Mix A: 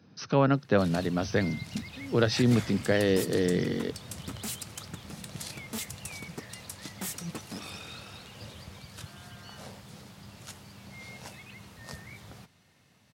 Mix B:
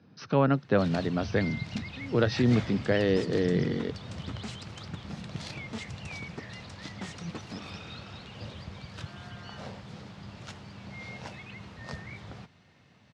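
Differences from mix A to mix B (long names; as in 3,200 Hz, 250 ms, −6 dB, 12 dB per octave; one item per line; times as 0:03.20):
first sound +4.5 dB
second sound: add Savitzky-Golay smoothing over 9 samples
master: add high-frequency loss of the air 140 metres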